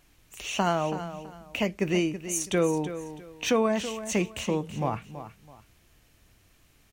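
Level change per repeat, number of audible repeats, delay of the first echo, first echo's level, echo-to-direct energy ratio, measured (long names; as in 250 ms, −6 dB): −11.0 dB, 2, 328 ms, −12.0 dB, −11.5 dB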